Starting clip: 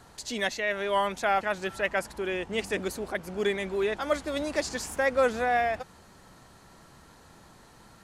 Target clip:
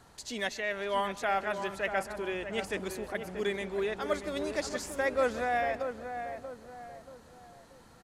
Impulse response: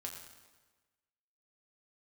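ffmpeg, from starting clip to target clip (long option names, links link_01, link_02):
-filter_complex "[0:a]asplit=2[link_01][link_02];[link_02]adelay=633,lowpass=frequency=1400:poles=1,volume=-7dB,asplit=2[link_03][link_04];[link_04]adelay=633,lowpass=frequency=1400:poles=1,volume=0.43,asplit=2[link_05][link_06];[link_06]adelay=633,lowpass=frequency=1400:poles=1,volume=0.43,asplit=2[link_07][link_08];[link_08]adelay=633,lowpass=frequency=1400:poles=1,volume=0.43,asplit=2[link_09][link_10];[link_10]adelay=633,lowpass=frequency=1400:poles=1,volume=0.43[link_11];[link_01][link_03][link_05][link_07][link_09][link_11]amix=inputs=6:normalize=0,asplit=2[link_12][link_13];[1:a]atrim=start_sample=2205,adelay=131[link_14];[link_13][link_14]afir=irnorm=-1:irlink=0,volume=-17dB[link_15];[link_12][link_15]amix=inputs=2:normalize=0,volume=-4.5dB"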